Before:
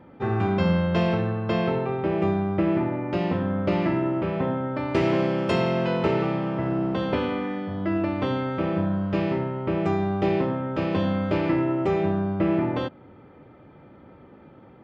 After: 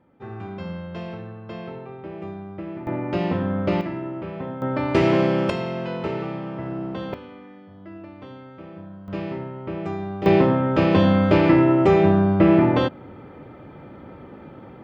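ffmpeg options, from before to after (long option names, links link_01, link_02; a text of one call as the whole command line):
ffmpeg -i in.wav -af "asetnsamples=nb_out_samples=441:pad=0,asendcmd='2.87 volume volume 1.5dB;3.81 volume volume -6dB;4.62 volume volume 4dB;5.5 volume volume -4.5dB;7.14 volume volume -15dB;9.08 volume volume -5dB;10.26 volume volume 7.5dB',volume=-11dB" out.wav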